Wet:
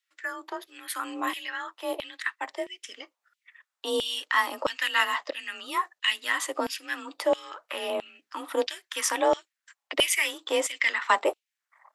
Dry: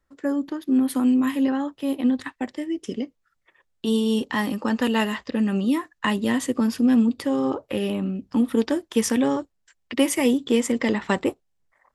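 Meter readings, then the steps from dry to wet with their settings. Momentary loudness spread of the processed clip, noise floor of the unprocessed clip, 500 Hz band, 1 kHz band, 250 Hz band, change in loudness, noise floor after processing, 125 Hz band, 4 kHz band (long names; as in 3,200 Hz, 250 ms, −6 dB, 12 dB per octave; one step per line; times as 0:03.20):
13 LU, −72 dBFS, −3.5 dB, +2.0 dB, −20.5 dB, −5.0 dB, below −85 dBFS, below −25 dB, +4.0 dB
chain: frequency shifter +36 Hz
auto-filter high-pass saw down 1.5 Hz 580–3,100 Hz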